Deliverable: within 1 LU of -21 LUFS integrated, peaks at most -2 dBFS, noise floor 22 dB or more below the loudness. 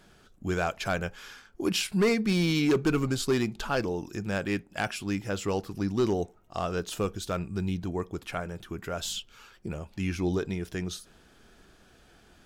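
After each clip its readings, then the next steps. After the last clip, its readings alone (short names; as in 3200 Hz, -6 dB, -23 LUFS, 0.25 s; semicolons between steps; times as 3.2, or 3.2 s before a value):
clipped 0.4%; flat tops at -18.5 dBFS; loudness -30.0 LUFS; peak -18.5 dBFS; loudness target -21.0 LUFS
-> clip repair -18.5 dBFS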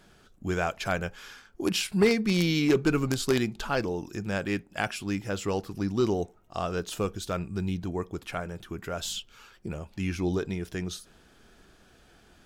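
clipped 0.0%; loudness -29.5 LUFS; peak -9.5 dBFS; loudness target -21.0 LUFS
-> gain +8.5 dB; limiter -2 dBFS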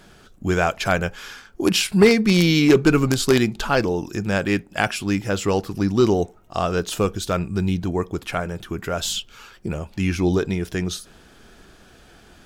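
loudness -21.0 LUFS; peak -2.0 dBFS; noise floor -50 dBFS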